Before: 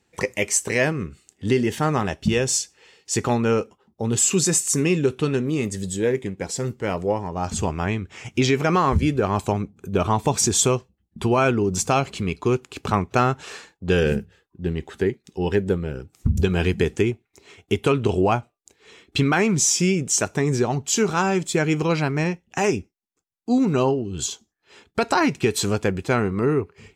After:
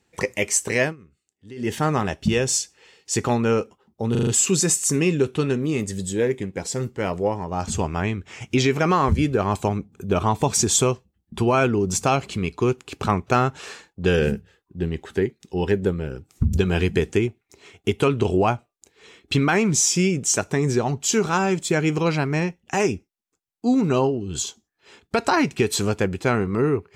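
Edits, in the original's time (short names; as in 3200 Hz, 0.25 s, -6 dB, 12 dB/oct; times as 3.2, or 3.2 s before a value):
0.82–1.7 dip -20 dB, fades 0.14 s
4.11 stutter 0.04 s, 5 plays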